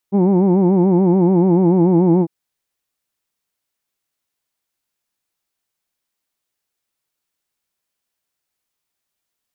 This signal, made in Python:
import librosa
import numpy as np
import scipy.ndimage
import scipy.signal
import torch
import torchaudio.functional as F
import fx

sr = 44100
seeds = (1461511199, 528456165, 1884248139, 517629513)

y = fx.vowel(sr, seeds[0], length_s=2.15, word="who'd", hz=190.0, glide_st=-1.5, vibrato_hz=6.9, vibrato_st=1.15)